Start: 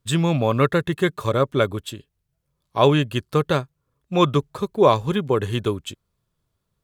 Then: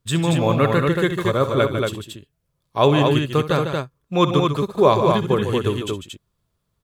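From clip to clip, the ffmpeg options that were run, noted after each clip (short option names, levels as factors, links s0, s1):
-af "aecho=1:1:63|143|149|229:0.224|0.119|0.376|0.631"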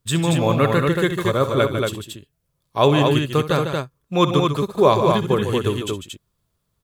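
-af "highshelf=f=6200:g=5"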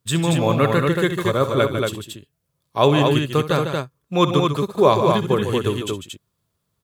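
-af "highpass=74"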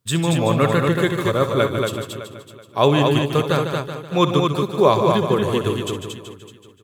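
-af "aecho=1:1:378|756|1134:0.266|0.0798|0.0239"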